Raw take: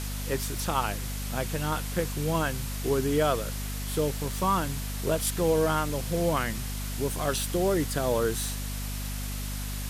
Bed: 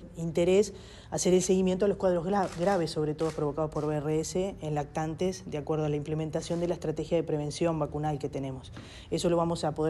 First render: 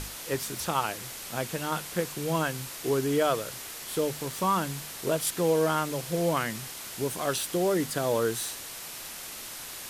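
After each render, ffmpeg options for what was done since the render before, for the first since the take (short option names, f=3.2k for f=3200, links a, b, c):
-af "bandreject=f=50:t=h:w=6,bandreject=f=100:t=h:w=6,bandreject=f=150:t=h:w=6,bandreject=f=200:t=h:w=6,bandreject=f=250:t=h:w=6"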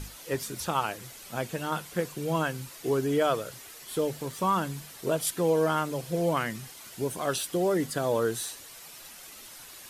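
-af "afftdn=nr=9:nf=-41"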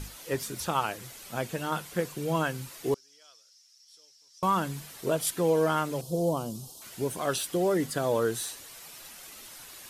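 -filter_complex "[0:a]asettb=1/sr,asplit=3[a][b][c];[a]atrim=end=2.944[d];[b]atrim=start=2.94:end=4.43,asetpts=PTS-STARTPTS,afade=t=in:d=0.004:c=qsin,afade=t=out:st=1.486:d=0.004:c=qsin,bandpass=f=5.4k:t=q:w=9.9[e];[c]atrim=start=4.426[f];[d][e]acrossfade=d=0.004:c1=hsin:c2=qsin[g];[g][f]acrossfade=d=0.004:c1=qsin:c2=hsin,asettb=1/sr,asplit=3[h][i][j];[h]atrim=end=6.014[k];[i]atrim=start=6.01:end=6.82,asetpts=PTS-STARTPTS,afade=t=in:d=0.004:c=qsin,afade=t=out:st=0.806:d=0.004:c=qsin,asuperstop=centerf=1900:order=4:qfactor=0.6[l];[j]atrim=start=6.816[m];[k][l]acrossfade=d=0.004:c1=hsin:c2=qsin[n];[n][m]acrossfade=d=0.004:c1=qsin:c2=hsin"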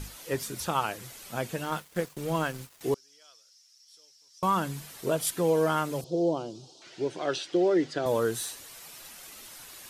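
-filter_complex "[0:a]asettb=1/sr,asplit=3[a][b][c];[a]atrim=end=1.644[d];[b]atrim=start=1.64:end=2.81,asetpts=PTS-STARTPTS,afade=t=in:d=0.004:c=qsin,afade=t=out:st=1.166:d=0.004:c=qsin,aeval=exprs='sgn(val(0))*max(abs(val(0))-0.00631,0)':c=same[e];[c]atrim=start=2.806[f];[d][e]acrossfade=d=0.004:c1=hsin:c2=qsin[g];[g][f]acrossfade=d=0.004:c1=qsin:c2=hsin,asettb=1/sr,asplit=3[h][i][j];[h]atrim=end=6.044[k];[i]atrim=start=6.04:end=8.06,asetpts=PTS-STARTPTS,afade=t=in:d=0.004:c=qsin,afade=t=out:st=2.016:d=0.004:c=qsin,highpass=180,equalizer=f=220:t=q:w=4:g=-10,equalizer=f=340:t=q:w=4:g=7,equalizer=f=1.1k:t=q:w=4:g=-7,lowpass=f=5.6k:w=0.5412,lowpass=f=5.6k:w=1.3066[l];[j]atrim=start=8.056[m];[k][l]acrossfade=d=0.004:c1=hsin:c2=qsin[n];[n][m]acrossfade=d=0.004:c1=qsin:c2=hsin"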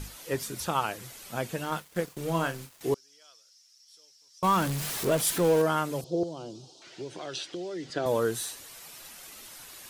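-filter_complex "[0:a]asettb=1/sr,asplit=3[a][b][c];[a]atrim=end=2.044[d];[b]atrim=start=2.04:end=2.93,asetpts=PTS-STARTPTS,afade=t=in:d=0.004:c=qsin,afade=t=out:st=0.886:d=0.004:c=qsin,asplit=2[e][f];[f]adelay=36,volume=-9dB[g];[e][g]amix=inputs=2:normalize=0,atrim=end_sample=39249[h];[c]atrim=start=2.926[i];[d][h]acrossfade=d=0.004:c1=hsin:c2=qsin[j];[j][i]acrossfade=d=0.004:c1=qsin:c2=hsin,asettb=1/sr,asplit=3[k][l][m];[k]atrim=end=4.444[n];[l]atrim=start=4.44:end=5.62,asetpts=PTS-STARTPTS,afade=t=in:d=0.004:c=qsin,afade=t=out:st=1.176:d=0.004:c=qsin,aeval=exprs='val(0)+0.5*0.0335*sgn(val(0))':c=same[o];[m]atrim=start=5.616[p];[n][o]acrossfade=d=0.004:c1=hsin:c2=qsin[q];[q][p]acrossfade=d=0.004:c1=qsin:c2=hsin,asettb=1/sr,asplit=3[r][s][t];[r]atrim=end=6.234[u];[s]atrim=start=6.23:end=7.9,asetpts=PTS-STARTPTS,afade=t=in:d=0.004:c=qsin,afade=t=out:st=1.666:d=0.004:c=qsin,acrossover=split=130|3000[v][w][x];[w]acompressor=threshold=-35dB:ratio=6:attack=3.2:release=140:knee=2.83:detection=peak[y];[v][y][x]amix=inputs=3:normalize=0[z];[t]atrim=start=7.896[aa];[u][z]acrossfade=d=0.004:c1=hsin:c2=qsin[ab];[ab][aa]acrossfade=d=0.004:c1=qsin:c2=hsin"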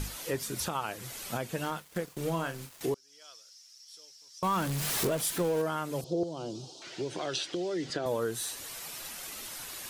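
-filter_complex "[0:a]asplit=2[a][b];[b]acompressor=threshold=-37dB:ratio=6,volume=-2.5dB[c];[a][c]amix=inputs=2:normalize=0,alimiter=limit=-21dB:level=0:latency=1:release=399"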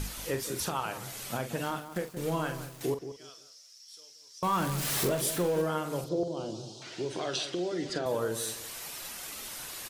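-filter_complex "[0:a]asplit=2[a][b];[b]adelay=45,volume=-9dB[c];[a][c]amix=inputs=2:normalize=0,asplit=2[d][e];[e]adelay=176,lowpass=f=1.1k:p=1,volume=-10dB,asplit=2[f][g];[g]adelay=176,lowpass=f=1.1k:p=1,volume=0.25,asplit=2[h][i];[i]adelay=176,lowpass=f=1.1k:p=1,volume=0.25[j];[f][h][j]amix=inputs=3:normalize=0[k];[d][k]amix=inputs=2:normalize=0"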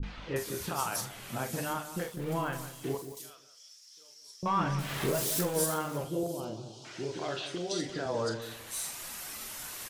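-filter_complex "[0:a]asplit=2[a][b];[b]adelay=35,volume=-13dB[c];[a][c]amix=inputs=2:normalize=0,acrossover=split=430|3700[d][e][f];[e]adelay=30[g];[f]adelay=360[h];[d][g][h]amix=inputs=3:normalize=0"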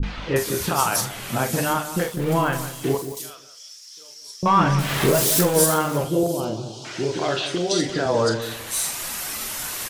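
-af "volume=12dB"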